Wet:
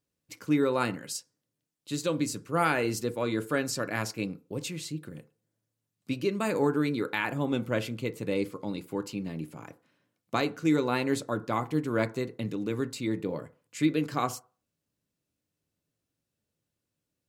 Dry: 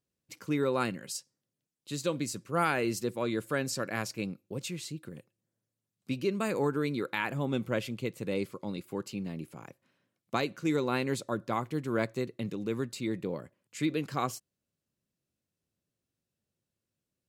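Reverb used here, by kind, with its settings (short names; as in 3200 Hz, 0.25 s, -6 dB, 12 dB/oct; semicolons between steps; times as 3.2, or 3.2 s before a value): FDN reverb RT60 0.37 s, low-frequency decay 0.8×, high-frequency decay 0.3×, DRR 9.5 dB; gain +2 dB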